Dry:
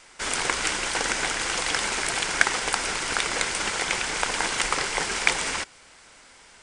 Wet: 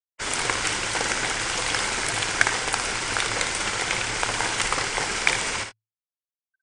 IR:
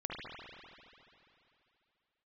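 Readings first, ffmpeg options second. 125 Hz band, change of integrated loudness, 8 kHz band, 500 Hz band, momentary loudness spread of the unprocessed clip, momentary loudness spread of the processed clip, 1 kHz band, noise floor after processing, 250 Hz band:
+6.0 dB, +1.0 dB, +0.5 dB, +1.0 dB, 3 LU, 3 LU, +1.0 dB, under -85 dBFS, +1.0 dB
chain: -filter_complex "[0:a]afftfilt=real='re*gte(hypot(re,im),0.0141)':imag='im*gte(hypot(re,im),0.0141)':win_size=1024:overlap=0.75,equalizer=f=110:w=6.1:g=15,asplit=2[a][b];[b]aecho=0:1:57|79:0.422|0.188[c];[a][c]amix=inputs=2:normalize=0"

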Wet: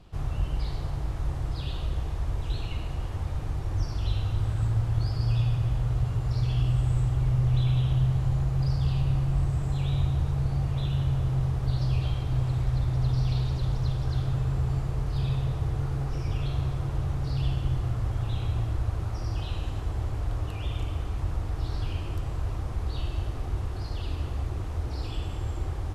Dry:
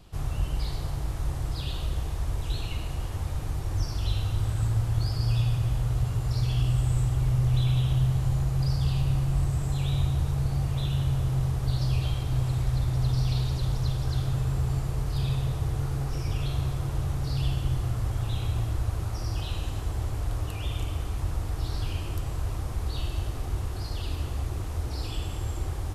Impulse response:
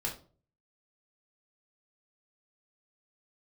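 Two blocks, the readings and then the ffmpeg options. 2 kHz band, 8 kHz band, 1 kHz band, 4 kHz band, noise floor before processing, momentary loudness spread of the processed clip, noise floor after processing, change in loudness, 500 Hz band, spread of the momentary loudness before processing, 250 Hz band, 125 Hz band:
-1.5 dB, n/a, -0.5 dB, -3.5 dB, -34 dBFS, 7 LU, -34 dBFS, 0.0 dB, 0.0 dB, 7 LU, 0.0 dB, 0.0 dB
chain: -af "aemphasis=mode=reproduction:type=50kf"

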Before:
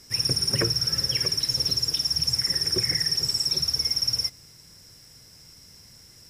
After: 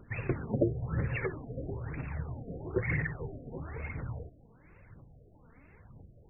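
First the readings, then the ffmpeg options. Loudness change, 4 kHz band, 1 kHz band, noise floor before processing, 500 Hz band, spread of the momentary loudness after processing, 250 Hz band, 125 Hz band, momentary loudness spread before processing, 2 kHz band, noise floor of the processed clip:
-13.5 dB, under -40 dB, -1.5 dB, -51 dBFS, +1.0 dB, 12 LU, +1.5 dB, 0.0 dB, 1 LU, -1.5 dB, -59 dBFS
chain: -af "aphaser=in_gain=1:out_gain=1:delay=4.6:decay=0.56:speed=1:type=triangular,afftfilt=real='re*lt(b*sr/1024,710*pow(2800/710,0.5+0.5*sin(2*PI*1.1*pts/sr)))':imag='im*lt(b*sr/1024,710*pow(2800/710,0.5+0.5*sin(2*PI*1.1*pts/sr)))':win_size=1024:overlap=0.75"

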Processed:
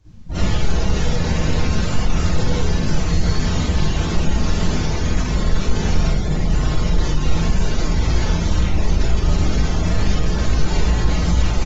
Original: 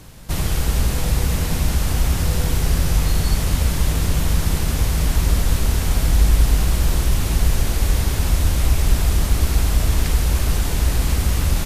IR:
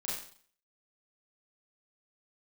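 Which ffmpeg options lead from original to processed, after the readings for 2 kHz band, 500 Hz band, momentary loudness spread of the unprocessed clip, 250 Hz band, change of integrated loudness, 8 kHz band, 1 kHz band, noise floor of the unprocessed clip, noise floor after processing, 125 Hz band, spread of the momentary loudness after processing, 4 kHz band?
+1.0 dB, +4.0 dB, 2 LU, +4.5 dB, -0.5 dB, -5.5 dB, +2.5 dB, -23 dBFS, -21 dBFS, 0.0 dB, 2 LU, 0.0 dB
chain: -filter_complex "[0:a]aresample=16000,asoftclip=type=hard:threshold=-16.5dB,aresample=44100,flanger=delay=19.5:depth=4.2:speed=2.1,acrossover=split=3900[a][b];[b]acrusher=bits=3:mode=log:mix=0:aa=0.000001[c];[a][c]amix=inputs=2:normalize=0[d];[1:a]atrim=start_sample=2205,afade=t=out:st=0.16:d=0.01,atrim=end_sample=7497,asetrate=37044,aresample=44100[e];[d][e]afir=irnorm=-1:irlink=0,acontrast=33,afftdn=nr=19:nf=-31"

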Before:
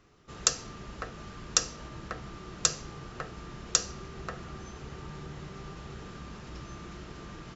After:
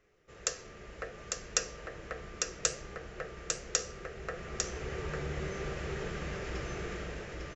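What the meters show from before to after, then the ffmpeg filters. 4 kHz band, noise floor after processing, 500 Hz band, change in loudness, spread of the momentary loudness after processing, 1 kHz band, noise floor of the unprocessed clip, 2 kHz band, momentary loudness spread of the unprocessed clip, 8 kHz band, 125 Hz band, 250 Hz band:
-5.5 dB, -53 dBFS, +5.0 dB, -3.0 dB, 11 LU, -2.5 dB, -47 dBFS, +2.0 dB, 16 LU, n/a, +0.5 dB, -1.0 dB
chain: -filter_complex "[0:a]equalizer=f=125:t=o:w=1:g=-4,equalizer=f=250:t=o:w=1:g=-8,equalizer=f=500:t=o:w=1:g=9,equalizer=f=1k:t=o:w=1:g=-8,equalizer=f=2k:t=o:w=1:g=7,equalizer=f=4k:t=o:w=1:g=-6,dynaudnorm=f=150:g=9:m=13dB,flanger=delay=4.6:depth=9.4:regen=80:speed=0.66:shape=sinusoidal,asplit=2[a][b];[b]aecho=0:1:850:0.631[c];[a][c]amix=inputs=2:normalize=0,volume=-3dB"

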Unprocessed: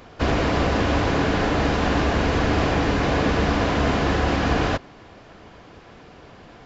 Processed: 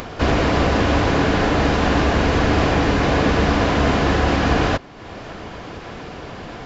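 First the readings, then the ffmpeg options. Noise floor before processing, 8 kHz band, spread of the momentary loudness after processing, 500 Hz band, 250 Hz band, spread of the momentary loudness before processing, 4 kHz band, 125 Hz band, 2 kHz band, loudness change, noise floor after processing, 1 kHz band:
-46 dBFS, n/a, 17 LU, +3.5 dB, +3.5 dB, 1 LU, +3.5 dB, +3.5 dB, +3.5 dB, +3.5 dB, -35 dBFS, +3.5 dB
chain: -af "acompressor=mode=upward:threshold=-27dB:ratio=2.5,volume=3.5dB"

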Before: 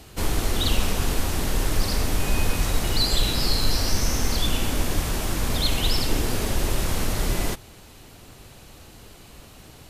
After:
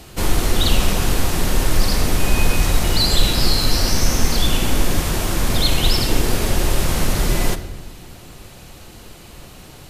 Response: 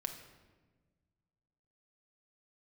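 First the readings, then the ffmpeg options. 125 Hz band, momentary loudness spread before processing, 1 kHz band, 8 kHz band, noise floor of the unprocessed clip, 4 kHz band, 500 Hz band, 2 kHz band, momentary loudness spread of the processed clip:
+5.5 dB, 4 LU, +5.5 dB, +5.5 dB, -47 dBFS, +5.5 dB, +6.0 dB, +6.0 dB, 4 LU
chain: -filter_complex "[0:a]asplit=2[a][b];[1:a]atrim=start_sample=2205[c];[b][c]afir=irnorm=-1:irlink=0,volume=4dB[d];[a][d]amix=inputs=2:normalize=0,volume=-2dB"

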